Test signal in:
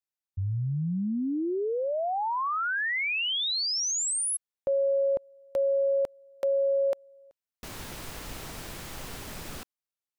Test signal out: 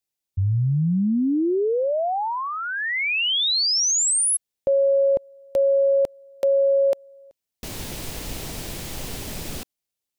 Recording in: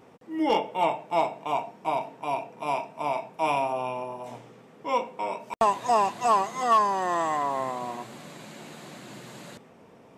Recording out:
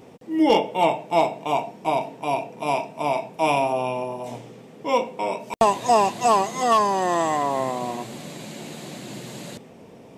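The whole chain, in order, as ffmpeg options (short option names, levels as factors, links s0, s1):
-af "equalizer=f=1300:t=o:w=1.3:g=-8.5,volume=2.66"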